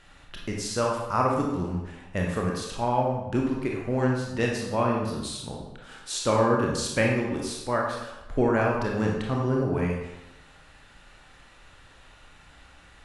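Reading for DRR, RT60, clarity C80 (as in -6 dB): -1.5 dB, 1.0 s, 4.5 dB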